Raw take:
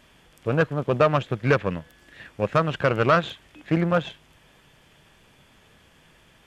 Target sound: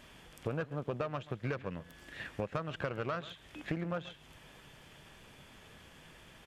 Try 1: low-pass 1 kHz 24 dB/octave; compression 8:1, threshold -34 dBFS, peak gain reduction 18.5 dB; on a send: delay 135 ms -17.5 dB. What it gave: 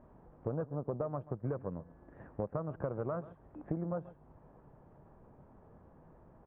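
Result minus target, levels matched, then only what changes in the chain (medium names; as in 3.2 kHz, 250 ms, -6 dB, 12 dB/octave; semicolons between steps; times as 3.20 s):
1 kHz band -3.5 dB
remove: low-pass 1 kHz 24 dB/octave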